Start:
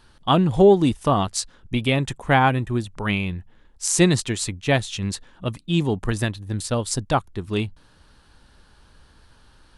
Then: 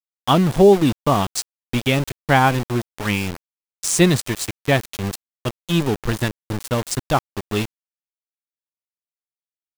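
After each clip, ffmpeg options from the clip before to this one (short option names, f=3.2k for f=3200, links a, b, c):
-af "aeval=exprs='val(0)*gte(abs(val(0)),0.0596)':c=same,volume=2dB"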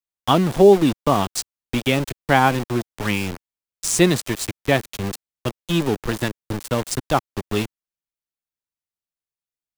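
-filter_complex "[0:a]lowshelf=f=210:g=9.5,acrossover=split=230|1000|4900[a][b][c][d];[a]acompressor=threshold=-27dB:ratio=6[e];[e][b][c][d]amix=inputs=4:normalize=0,volume=-1dB"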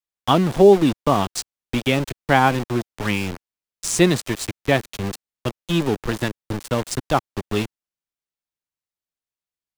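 -af "highshelf=f=9.2k:g=-5.5"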